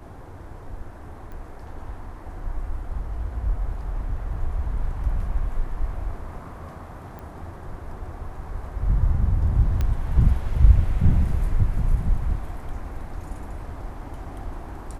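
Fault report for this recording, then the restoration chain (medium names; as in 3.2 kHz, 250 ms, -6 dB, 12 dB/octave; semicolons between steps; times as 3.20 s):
1.32 s: pop -29 dBFS
7.19 s: pop -26 dBFS
9.81 s: pop -14 dBFS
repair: de-click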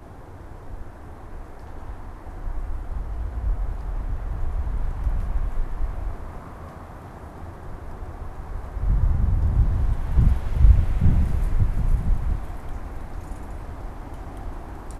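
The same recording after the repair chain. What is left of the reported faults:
nothing left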